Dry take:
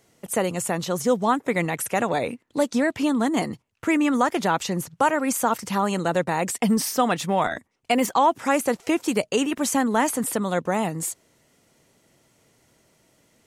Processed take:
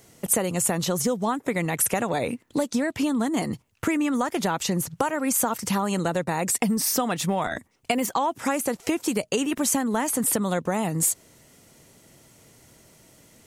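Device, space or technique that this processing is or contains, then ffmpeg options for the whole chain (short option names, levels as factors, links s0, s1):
ASMR close-microphone chain: -filter_complex "[0:a]lowshelf=f=200:g=5.5,acompressor=threshold=0.0447:ratio=6,highshelf=f=6600:g=7.5,asettb=1/sr,asplit=3[s0][s1][s2];[s0]atrim=end=6.224[s3];[s1]atrim=start=6.22:end=6.92,asetpts=PTS-STARTPTS,afade=t=in:d=0.004:c=qsin,afade=t=out:st=0.696:d=0.004:c=qsin,bandreject=f=3100:w=12[s4];[s2]atrim=start=6.916[s5];[s3][s4]acrossfade=d=0.004:c1=hsin:c2=qsin[s6];[s6][s5]acrossfade=d=0.004:c1=qsin:c2=hsin,volume=1.78"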